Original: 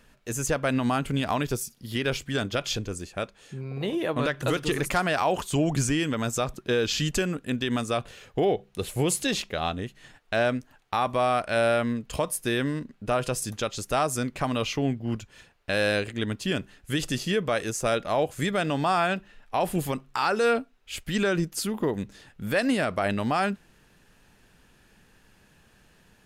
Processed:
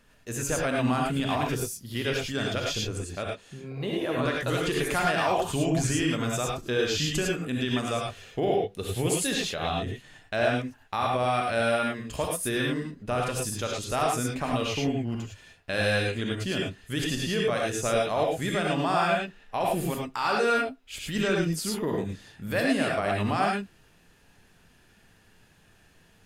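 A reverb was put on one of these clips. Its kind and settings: gated-style reverb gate 130 ms rising, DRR -1.5 dB; trim -4 dB

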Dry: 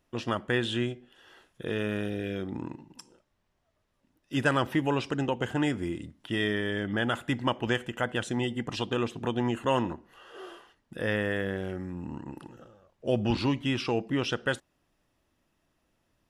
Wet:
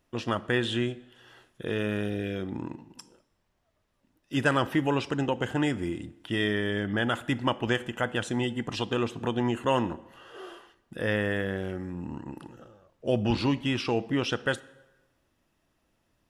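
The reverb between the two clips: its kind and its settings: plate-style reverb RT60 1.1 s, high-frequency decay 0.8×, DRR 18 dB; trim +1 dB

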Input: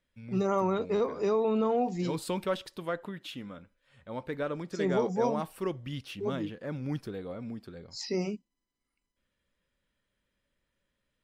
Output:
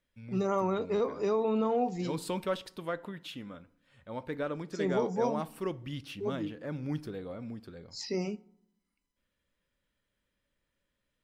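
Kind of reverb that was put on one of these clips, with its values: FDN reverb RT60 0.7 s, low-frequency decay 1.4×, high-frequency decay 0.55×, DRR 17.5 dB; trim -1.5 dB

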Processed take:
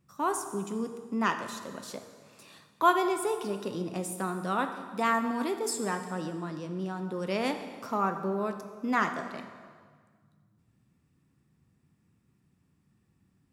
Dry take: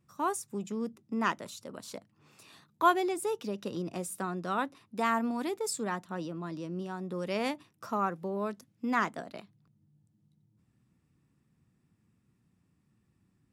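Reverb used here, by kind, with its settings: plate-style reverb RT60 1.7 s, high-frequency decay 0.85×, DRR 6.5 dB; trim +1.5 dB

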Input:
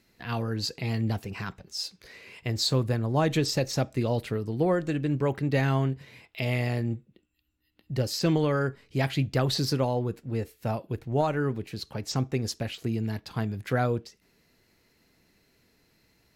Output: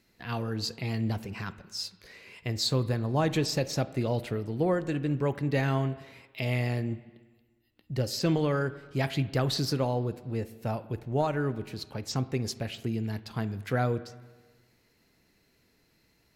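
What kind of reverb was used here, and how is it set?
spring tank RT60 1.4 s, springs 40/49/55 ms, chirp 30 ms, DRR 15 dB; trim -2 dB

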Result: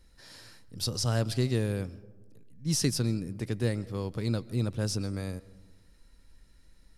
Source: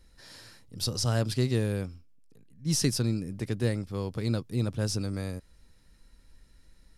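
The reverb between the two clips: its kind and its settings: algorithmic reverb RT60 1.3 s, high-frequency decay 0.3×, pre-delay 95 ms, DRR 20 dB; trim -1 dB

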